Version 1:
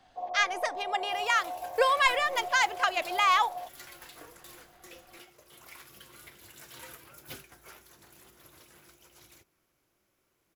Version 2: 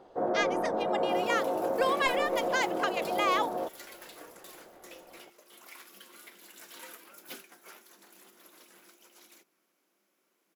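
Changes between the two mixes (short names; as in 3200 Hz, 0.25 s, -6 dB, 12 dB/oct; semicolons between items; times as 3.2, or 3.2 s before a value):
speech -5.0 dB; first sound: remove vocal tract filter a; second sound: add brick-wall FIR high-pass 170 Hz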